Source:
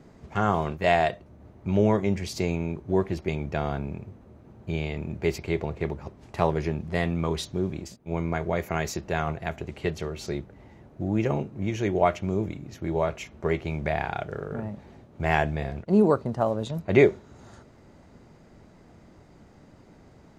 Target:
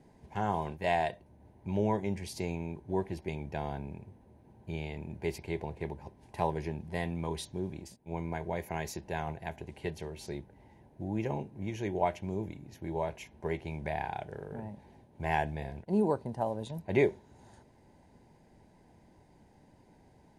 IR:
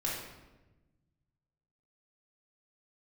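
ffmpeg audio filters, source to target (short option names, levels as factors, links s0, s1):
-af "superequalizer=9b=1.78:10b=0.316:16b=2.82,volume=0.376"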